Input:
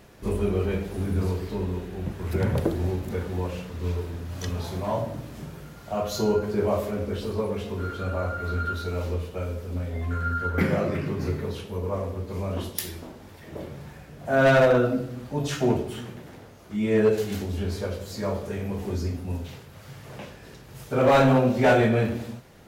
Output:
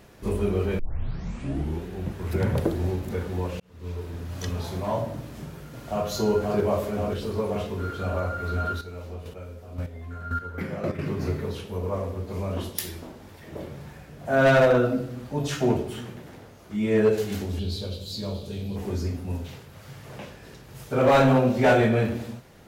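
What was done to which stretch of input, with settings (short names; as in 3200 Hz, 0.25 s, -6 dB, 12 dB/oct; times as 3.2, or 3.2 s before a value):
0.79 tape start 1.06 s
3.6–4.22 fade in
5.2–6.07 echo throw 0.53 s, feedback 80%, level -2.5 dB
8.73–10.99 chopper 1.9 Hz, depth 65%, duty 15%
17.59–18.76 EQ curve 160 Hz 0 dB, 1900 Hz -14 dB, 4000 Hz +12 dB, 5700 Hz -2 dB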